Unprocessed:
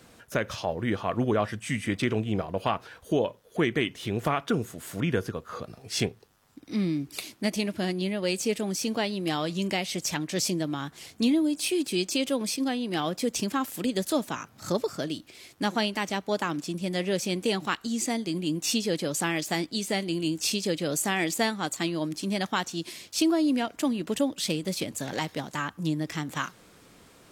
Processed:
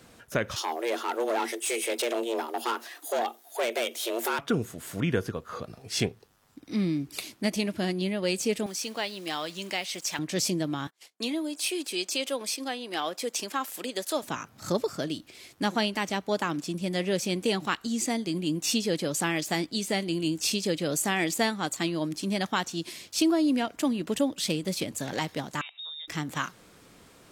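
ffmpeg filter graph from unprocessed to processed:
-filter_complex "[0:a]asettb=1/sr,asplit=3[s0][s1][s2];[s0]atrim=end=0.564[s3];[s1]atrim=start=0.56:end=4.39,asetpts=PTS-STARTPTS,afade=t=in:d=0.004:c=qsin,afade=t=out:st=3.826:d=0.004:c=qsin,aemphasis=mode=production:type=75kf,asoftclip=type=hard:threshold=0.0596,afreqshift=230[s4];[s2]atrim=start=4.386[s5];[s3][s4]acrossfade=d=0.004:c1=hsin:c2=qsin[s6];[s6][s5]acrossfade=d=0.004:c1=qsin:c2=hsin,asettb=1/sr,asplit=3[s7][s8][s9];[s7]atrim=end=8.664[s10];[s8]atrim=start=8.66:end=10.19,asetpts=PTS-STARTPTS,afade=t=in:d=0.004:c=qsin,afade=t=out:st=1.526:d=0.004:c=qsin,acrusher=bits=9:dc=4:mix=0:aa=0.000001,highpass=f=780:p=1,highshelf=f=9600:g=-3.5[s11];[s9]atrim=start=10.186[s12];[s10][s11]acrossfade=d=0.004:c1=hsin:c2=qsin[s13];[s13][s12]acrossfade=d=0.004:c1=qsin:c2=hsin,asettb=1/sr,asplit=3[s14][s15][s16];[s14]atrim=end=10.874[s17];[s15]atrim=start=10.87:end=14.23,asetpts=PTS-STARTPTS,afade=t=in:d=0.004:c=qsin,afade=t=out:st=3.356:d=0.004:c=qsin,agate=range=0.0398:threshold=0.00631:ratio=16:release=100:detection=peak,highpass=460[s18];[s16]atrim=start=14.226[s19];[s17][s18]acrossfade=d=0.004:c1=hsin:c2=qsin[s20];[s20][s19]acrossfade=d=0.004:c1=qsin:c2=hsin,asettb=1/sr,asplit=3[s21][s22][s23];[s21]atrim=end=25.614[s24];[s22]atrim=start=25.61:end=26.08,asetpts=PTS-STARTPTS,afade=t=in:d=0.004:c=qsin,afade=t=out:st=0.466:d=0.004:c=qsin,lowpass=f=3300:t=q:w=0.5098,lowpass=f=3300:t=q:w=0.6013,lowpass=f=3300:t=q:w=0.9,lowpass=f=3300:t=q:w=2.563,afreqshift=-3900,acompressor=threshold=0.0126:ratio=5:attack=3.2:release=140:knee=1:detection=peak,highpass=f=430:w=0.5412,highpass=f=430:w=1.3066[s25];[s23]atrim=start=26.076[s26];[s24][s25]acrossfade=d=0.004:c1=hsin:c2=qsin[s27];[s27][s26]acrossfade=d=0.004:c1=qsin:c2=hsin"

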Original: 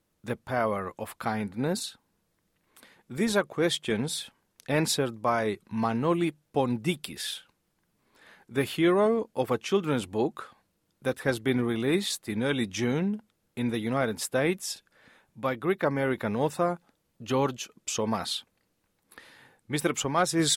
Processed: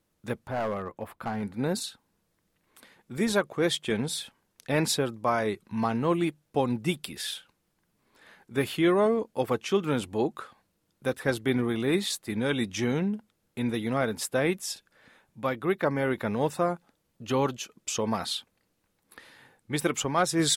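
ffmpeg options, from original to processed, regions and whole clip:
-filter_complex "[0:a]asettb=1/sr,asplit=3[s0][s1][s2];[s0]atrim=end=0.484[s3];[s1]atrim=start=0.48:end=1.43,asetpts=PTS-STARTPTS,afade=t=in:d=0.004:c=qsin,afade=t=out:st=0.946:d=0.004:c=qsin,equalizer=f=7300:w=0.34:g=-13,aeval=exprs='clip(val(0),-1,0.0562)':c=same[s4];[s2]atrim=start=1.426[s5];[s3][s4]acrossfade=d=0.004:c1=hsin:c2=qsin[s6];[s6][s5]acrossfade=d=0.004:c1=qsin:c2=hsin"

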